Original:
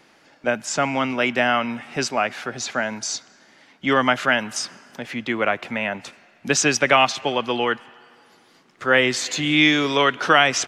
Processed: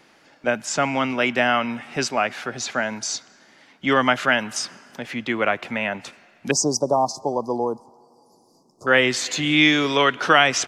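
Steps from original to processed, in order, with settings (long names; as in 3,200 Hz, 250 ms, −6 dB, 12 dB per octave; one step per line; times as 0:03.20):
0:06.51–0:08.87: Chebyshev band-stop filter 1,000–4,900 Hz, order 4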